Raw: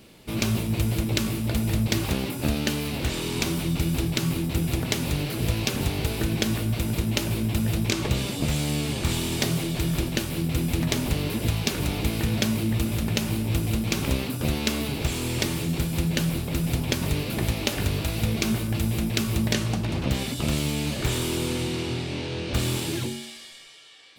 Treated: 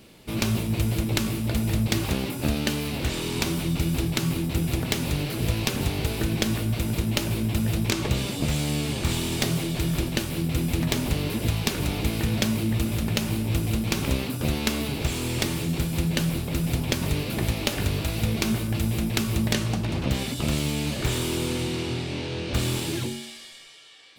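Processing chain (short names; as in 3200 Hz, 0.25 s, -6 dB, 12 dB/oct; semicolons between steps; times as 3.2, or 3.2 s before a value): tracing distortion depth 0.05 ms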